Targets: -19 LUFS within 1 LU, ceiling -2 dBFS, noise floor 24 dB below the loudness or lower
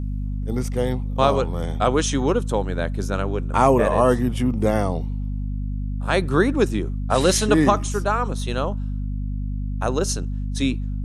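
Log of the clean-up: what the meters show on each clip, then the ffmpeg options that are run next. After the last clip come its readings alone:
hum 50 Hz; highest harmonic 250 Hz; hum level -23 dBFS; loudness -22.5 LUFS; peak level -2.0 dBFS; loudness target -19.0 LUFS
-> -af "bandreject=f=50:t=h:w=4,bandreject=f=100:t=h:w=4,bandreject=f=150:t=h:w=4,bandreject=f=200:t=h:w=4,bandreject=f=250:t=h:w=4"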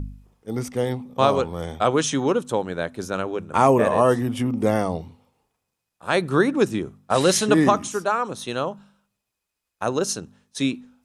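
hum not found; loudness -22.5 LUFS; peak level -2.5 dBFS; loudness target -19.0 LUFS
-> -af "volume=1.5,alimiter=limit=0.794:level=0:latency=1"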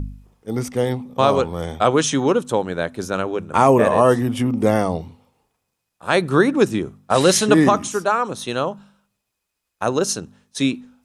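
loudness -19.0 LUFS; peak level -2.0 dBFS; noise floor -78 dBFS

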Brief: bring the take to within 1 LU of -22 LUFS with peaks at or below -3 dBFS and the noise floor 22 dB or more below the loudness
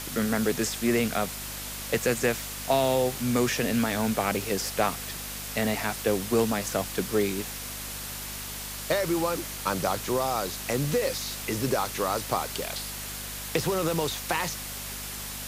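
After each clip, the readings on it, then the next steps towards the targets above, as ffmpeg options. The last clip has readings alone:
hum 50 Hz; highest harmonic 250 Hz; hum level -41 dBFS; noise floor -37 dBFS; noise floor target -50 dBFS; loudness -28.0 LUFS; peak level -11.0 dBFS; loudness target -22.0 LUFS
-> -af "bandreject=f=50:t=h:w=4,bandreject=f=100:t=h:w=4,bandreject=f=150:t=h:w=4,bandreject=f=200:t=h:w=4,bandreject=f=250:t=h:w=4"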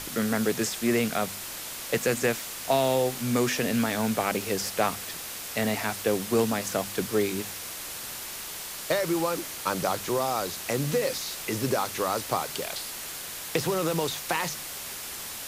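hum not found; noise floor -38 dBFS; noise floor target -50 dBFS
-> -af "afftdn=nr=12:nf=-38"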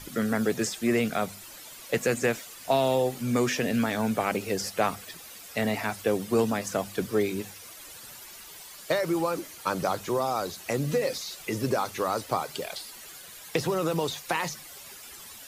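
noise floor -46 dBFS; noise floor target -51 dBFS
-> -af "afftdn=nr=6:nf=-46"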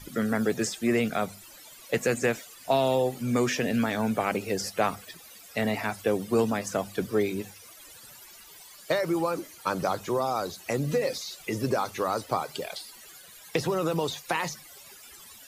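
noise floor -50 dBFS; noise floor target -51 dBFS
-> -af "afftdn=nr=6:nf=-50"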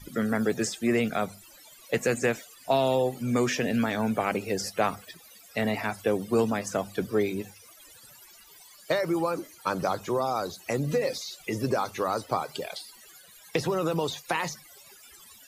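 noise floor -53 dBFS; loudness -28.5 LUFS; peak level -11.5 dBFS; loudness target -22.0 LUFS
-> -af "volume=2.11"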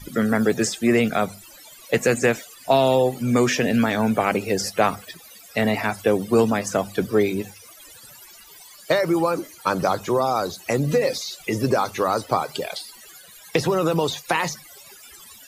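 loudness -22.0 LUFS; peak level -5.0 dBFS; noise floor -46 dBFS

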